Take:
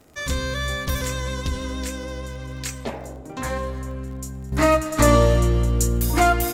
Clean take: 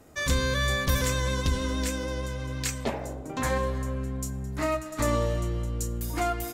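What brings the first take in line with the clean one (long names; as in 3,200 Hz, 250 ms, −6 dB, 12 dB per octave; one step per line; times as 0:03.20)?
click removal
level 0 dB, from 0:04.52 −10.5 dB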